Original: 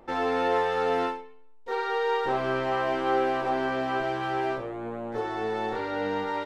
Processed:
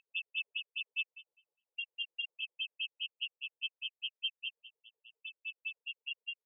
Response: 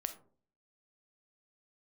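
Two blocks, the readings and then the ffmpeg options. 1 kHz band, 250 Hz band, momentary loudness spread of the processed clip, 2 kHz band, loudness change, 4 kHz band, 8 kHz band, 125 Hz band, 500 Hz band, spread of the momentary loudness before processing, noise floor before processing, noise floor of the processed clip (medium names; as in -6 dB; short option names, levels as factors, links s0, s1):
under -40 dB, under -40 dB, 11 LU, -7.5 dB, -11.5 dB, +3.5 dB, no reading, under -40 dB, under -40 dB, 8 LU, -48 dBFS, under -85 dBFS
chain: -af "afftfilt=real='re*(1-between(b*sr/4096,120,2600))':imag='im*(1-between(b*sr/4096,120,2600))':win_size=4096:overlap=0.75,afftfilt=real='re*between(b*sr/1024,590*pow(2500/590,0.5+0.5*sin(2*PI*4.9*pts/sr))/1.41,590*pow(2500/590,0.5+0.5*sin(2*PI*4.9*pts/sr))*1.41)':imag='im*between(b*sr/1024,590*pow(2500/590,0.5+0.5*sin(2*PI*4.9*pts/sr))/1.41,590*pow(2500/590,0.5+0.5*sin(2*PI*4.9*pts/sr))*1.41)':win_size=1024:overlap=0.75,volume=5.01"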